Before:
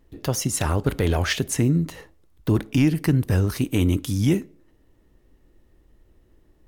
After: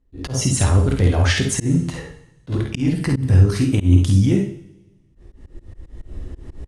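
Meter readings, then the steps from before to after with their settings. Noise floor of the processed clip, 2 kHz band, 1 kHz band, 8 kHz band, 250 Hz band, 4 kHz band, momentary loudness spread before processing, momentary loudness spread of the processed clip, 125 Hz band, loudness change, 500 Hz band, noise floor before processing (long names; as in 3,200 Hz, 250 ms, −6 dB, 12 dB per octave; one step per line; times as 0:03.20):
−54 dBFS, +3.0 dB, +1.5 dB, +4.0 dB, +2.5 dB, +3.5 dB, 5 LU, 16 LU, +6.5 dB, +4.5 dB, +1.5 dB, −60 dBFS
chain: camcorder AGC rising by 6 dB per second
noise gate with hold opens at −41 dBFS
reverb reduction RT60 0.55 s
Butterworth low-pass 10,000 Hz 36 dB per octave
low-shelf EQ 170 Hz +11 dB
in parallel at +1.5 dB: downward compressor, threshold −26 dBFS, peak gain reduction 15 dB
on the sum: brickwall limiter −9 dBFS, peak gain reduction 6.5 dB
on a send: ambience of single reflections 52 ms −5.5 dB, 67 ms −7.5 dB
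on the sum: harmonic generator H 2 −24 dB, 5 −35 dB, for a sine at −3 dBFS
coupled-rooms reverb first 0.67 s, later 1.7 s, from −19 dB, DRR 6 dB
volume swells 129 ms
level −1.5 dB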